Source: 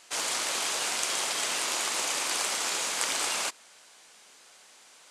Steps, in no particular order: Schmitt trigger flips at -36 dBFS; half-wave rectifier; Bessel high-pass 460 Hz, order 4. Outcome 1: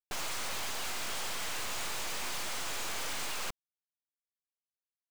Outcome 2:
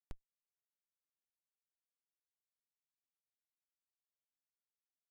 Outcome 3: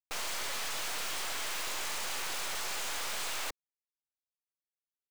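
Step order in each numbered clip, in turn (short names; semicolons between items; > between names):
Bessel high-pass > Schmitt trigger > half-wave rectifier; Bessel high-pass > half-wave rectifier > Schmitt trigger; Schmitt trigger > Bessel high-pass > half-wave rectifier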